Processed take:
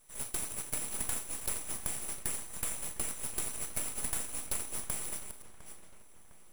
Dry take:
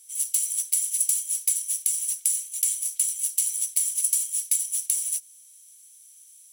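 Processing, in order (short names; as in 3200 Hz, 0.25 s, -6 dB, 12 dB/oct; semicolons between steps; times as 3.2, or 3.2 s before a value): reverse delay 0.319 s, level -10.5 dB; bell 4100 Hz -8 dB 0.78 oct; Schroeder reverb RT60 0.32 s, combs from 25 ms, DRR 8 dB; half-wave rectifier; on a send: darkening echo 0.706 s, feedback 53%, low-pass 3200 Hz, level -14 dB; on the sum: gain -8 dB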